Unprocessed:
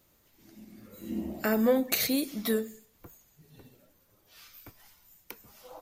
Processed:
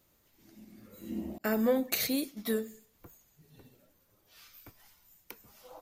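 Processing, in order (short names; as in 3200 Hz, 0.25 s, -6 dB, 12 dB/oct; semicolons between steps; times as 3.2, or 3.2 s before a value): 1.38–2.59 expander -30 dBFS; gain -3 dB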